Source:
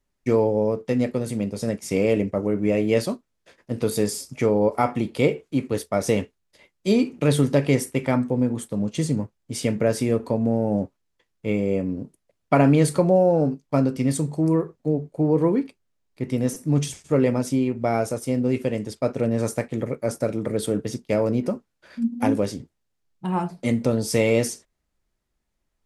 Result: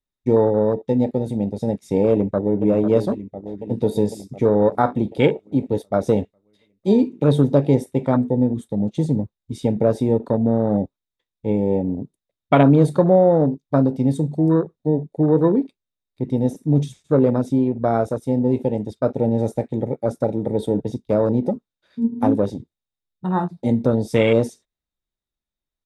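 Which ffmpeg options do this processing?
-filter_complex "[0:a]asplit=2[s0][s1];[s1]afade=t=in:st=2.11:d=0.01,afade=t=out:st=2.62:d=0.01,aecho=0:1:500|1000|1500|2000|2500|3000|3500|4000|4500|5000|5500|6000:0.354813|0.26611|0.199583|0.149687|0.112265|0.0841989|0.0631492|0.0473619|0.0355214|0.0266411|0.0199808|0.0149856[s2];[s0][s2]amix=inputs=2:normalize=0,afwtdn=0.0447,equalizer=f=3700:w=7.9:g=14.5,volume=1.5"

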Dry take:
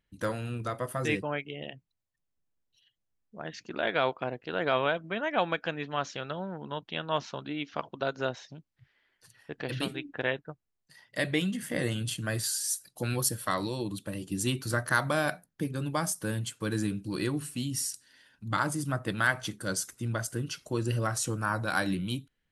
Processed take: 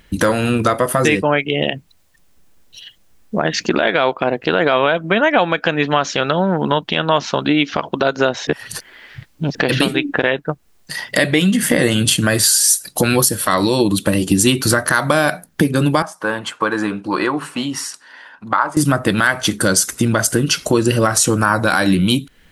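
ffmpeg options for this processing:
-filter_complex "[0:a]asettb=1/sr,asplit=3[s0][s1][s2];[s0]atrim=end=16.024[s3];[s1]atrim=start=16.02:end=18.77,asetpts=PTS-STARTPTS,afade=t=in:d=0.004:c=qsin,afade=t=out:st=2.746:d=0.004:c=qsin,bandpass=f=1000:t=q:w=2[s4];[s2]atrim=start=18.766[s5];[s3][s4]acrossfade=d=0.004:c1=hsin:c2=qsin[s6];[s6][s5]acrossfade=d=0.004:c1=qsin:c2=hsin,asplit=3[s7][s8][s9];[s7]atrim=end=8.472[s10];[s8]atrim=start=8.468:end=9.552,asetpts=PTS-STARTPTS,areverse[s11];[s9]atrim=start=9.548[s12];[s10][s11]acrossfade=d=0.004:c1=hsin:c2=hsin[s13];[s13][s12]acrossfade=d=0.004:c1=hsin:c2=hsin,equalizer=f=120:t=o:w=0.32:g=-9.5,acompressor=threshold=0.00562:ratio=3,alimiter=level_in=35.5:limit=0.891:release=50:level=0:latency=1,volume=0.891"

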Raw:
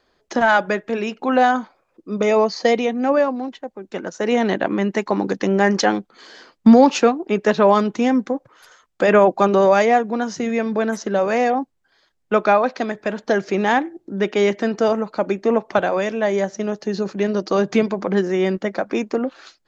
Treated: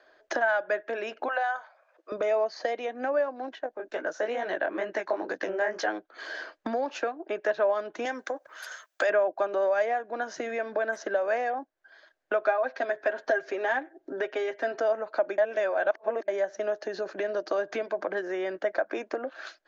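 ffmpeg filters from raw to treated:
-filter_complex "[0:a]asettb=1/sr,asplit=3[s0][s1][s2];[s0]atrim=end=1.284[s3];[s1]atrim=start=1.28:end=2.12,asetpts=PTS-STARTPTS,afade=t=in:d=0.004:c=qsin,afade=t=out:st=0.836:d=0.004:c=qsin,highpass=f=570:w=0.5412,highpass=f=570:w=1.3066[s4];[s2]atrim=start=2.116[s5];[s3][s4]acrossfade=d=0.004:c1=hsin:c2=qsin[s6];[s6][s5]acrossfade=d=0.004:c1=qsin:c2=hsin,asettb=1/sr,asplit=3[s7][s8][s9];[s7]atrim=end=3.554[s10];[s8]atrim=start=3.55:end=5.88,asetpts=PTS-STARTPTS,afade=t=in:d=0.004:c=qsin,afade=t=out:st=2.326:d=0.004:c=qsin,flanger=delay=15.5:depth=7.9:speed=2.2[s11];[s9]atrim=start=5.876[s12];[s10][s11]acrossfade=d=0.004:c1=hsin:c2=qsin[s13];[s13][s12]acrossfade=d=0.004:c1=qsin:c2=hsin,asettb=1/sr,asplit=3[s14][s15][s16];[s14]atrim=end=8.054[s17];[s15]atrim=start=8.05:end=9.1,asetpts=PTS-STARTPTS,afade=t=in:d=0.004:c=qsin,afade=t=out:st=1.046:d=0.004:c=qsin,aemphasis=mode=production:type=riaa[s18];[s16]atrim=start=9.096[s19];[s17][s18]acrossfade=d=0.004:c1=hsin:c2=qsin[s20];[s20][s19]acrossfade=d=0.004:c1=qsin:c2=hsin,asettb=1/sr,asplit=3[s21][s22][s23];[s21]atrim=end=12.414[s24];[s22]atrim=start=12.41:end=14.8,asetpts=PTS-STARTPTS,afade=t=in:d=0.004:c=qsin,afade=t=out:st=2.386:d=0.004:c=qsin,aecho=1:1:7.5:0.65,atrim=end_sample=105399[s25];[s23]atrim=start=14.796[s26];[s24][s25]acrossfade=d=0.004:c1=hsin:c2=qsin[s27];[s27][s26]acrossfade=d=0.004:c1=qsin:c2=hsin,asplit=3[s28][s29][s30];[s28]atrim=end=15.382[s31];[s29]atrim=start=15.378:end=16.282,asetpts=PTS-STARTPTS,areverse[s32];[s30]atrim=start=16.278[s33];[s31][s32]acrossfade=d=0.004:c1=hsin:c2=hsin[s34];[s34][s33]acrossfade=d=0.004:c1=hsin:c2=hsin,acrossover=split=330 4900:gain=0.141 1 0.224[s35][s36][s37];[s35][s36][s37]amix=inputs=3:normalize=0,acompressor=threshold=0.02:ratio=4,equalizer=f=200:t=o:w=0.33:g=-7,equalizer=f=315:t=o:w=0.33:g=6,equalizer=f=630:t=o:w=0.33:g=12,equalizer=f=1600:t=o:w=0.33:g=11,equalizer=f=6300:t=o:w=0.33:g=4"

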